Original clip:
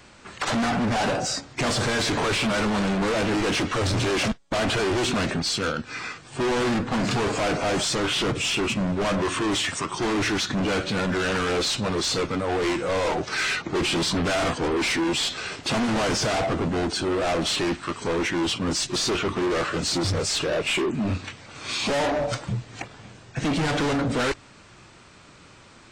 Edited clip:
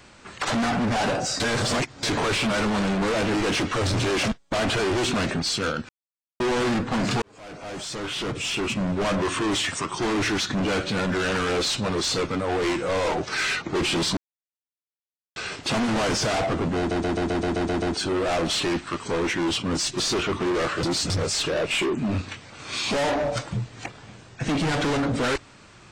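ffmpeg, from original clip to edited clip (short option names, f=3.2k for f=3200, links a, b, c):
-filter_complex "[0:a]asplit=18[a][b][c][d][e][f][g][h][i][j][k][l][m][n][o][p][q][r];[a]atrim=end=1.402[s];[b]atrim=start=1.398:end=2.032,asetpts=PTS-STARTPTS,areverse[t];[c]atrim=start=2.028:end=5.89,asetpts=PTS-STARTPTS,afade=t=out:st=3.858:d=0.004:c=hsin[u];[d]atrim=start=5.89:end=6.4,asetpts=PTS-STARTPTS,volume=0[v];[e]atrim=start=6.4:end=7.22,asetpts=PTS-STARTPTS,afade=t=in:d=0.004:c=hsin,afade=t=out:st=0.816:d=0.004:c=hsin[w];[f]atrim=start=7.22:end=14.17,asetpts=PTS-STARTPTS,afade=t=in:d=1.74,afade=t=out:st=6.946:d=0.004:c=hsin[x];[g]atrim=start=14.17:end=15.36,asetpts=PTS-STARTPTS,volume=0[y];[h]atrim=start=15.36:end=16.912,asetpts=PTS-STARTPTS,afade=t=in:d=0.004:c=hsin[z];[i]atrim=start=16.778:end=16.912[aa];[j]atrim=start=16.778:end=16.912[ab];[k]atrim=start=16.778:end=16.912[ac];[l]atrim=start=16.778:end=16.912[ad];[m]atrim=start=16.778:end=16.912[ae];[n]atrim=start=16.778:end=16.912[af];[o]atrim=start=16.778:end=16.912[ag];[p]atrim=start=16.778:end=19.792[ah];[q]atrim=start=19.788:end=20.062,asetpts=PTS-STARTPTS,areverse[ai];[r]atrim=start=20.058[aj];[s][t]acrossfade=d=0.004:c1=hsin:c2=hsin[ak];[u][v][w][x][y][z]concat=n=6:v=0:a=1[al];[ak][al]acrossfade=d=0.004:c1=hsin:c2=hsin[am];[am][aa]acrossfade=d=0.004:c1=hsin:c2=hsin[an];[an][ab]acrossfade=d=0.004:c1=hsin:c2=hsin[ao];[ao][ac]acrossfade=d=0.004:c1=hsin:c2=hsin[ap];[ap][ad]acrossfade=d=0.004:c1=hsin:c2=hsin[aq];[aq][ae]acrossfade=d=0.004:c1=hsin:c2=hsin[ar];[ar][af]acrossfade=d=0.004:c1=hsin:c2=hsin[as];[as][ag]acrossfade=d=0.004:c1=hsin:c2=hsin[at];[at][ah]acrossfade=d=0.004:c1=hsin:c2=hsin[au];[au][ai]acrossfade=d=0.004:c1=hsin:c2=hsin[av];[av][aj]acrossfade=d=0.004:c1=hsin:c2=hsin"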